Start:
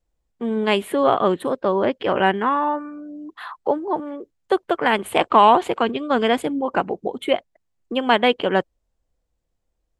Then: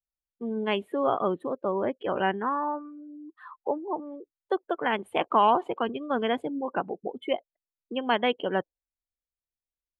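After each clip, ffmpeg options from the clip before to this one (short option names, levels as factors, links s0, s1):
-af "afftdn=nr=19:nf=-28,volume=0.398"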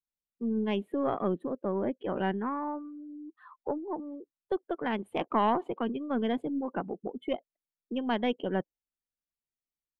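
-af "equalizer=f=210:t=o:w=1.8:g=10.5,aeval=exprs='0.398*(cos(1*acos(clip(val(0)/0.398,-1,1)))-cos(1*PI/2))+0.0562*(cos(2*acos(clip(val(0)/0.398,-1,1)))-cos(2*PI/2))':c=same,volume=0.398"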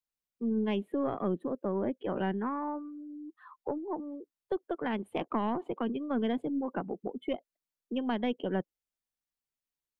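-filter_complex "[0:a]acrossover=split=330[s0][s1];[s1]acompressor=threshold=0.0282:ratio=6[s2];[s0][s2]amix=inputs=2:normalize=0"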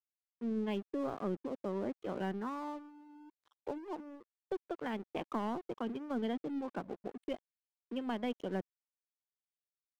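-af "aeval=exprs='sgn(val(0))*max(abs(val(0))-0.00473,0)':c=same,volume=0.596"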